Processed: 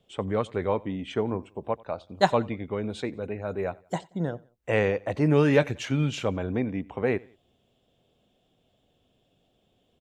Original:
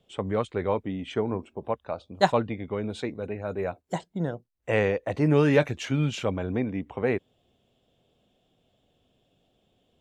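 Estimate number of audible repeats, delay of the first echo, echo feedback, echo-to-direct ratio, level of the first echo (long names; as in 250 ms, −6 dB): 2, 90 ms, 39%, −23.5 dB, −24.0 dB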